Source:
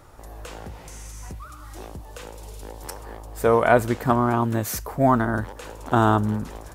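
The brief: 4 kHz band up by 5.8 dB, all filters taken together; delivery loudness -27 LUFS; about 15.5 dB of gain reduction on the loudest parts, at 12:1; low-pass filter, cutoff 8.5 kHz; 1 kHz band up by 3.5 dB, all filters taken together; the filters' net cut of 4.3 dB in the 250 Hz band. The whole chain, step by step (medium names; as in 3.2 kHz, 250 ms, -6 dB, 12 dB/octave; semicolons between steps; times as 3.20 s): low-pass 8.5 kHz; peaking EQ 250 Hz -5.5 dB; peaking EQ 1 kHz +4.5 dB; peaking EQ 4 kHz +7.5 dB; compression 12:1, threshold -27 dBFS; trim +7.5 dB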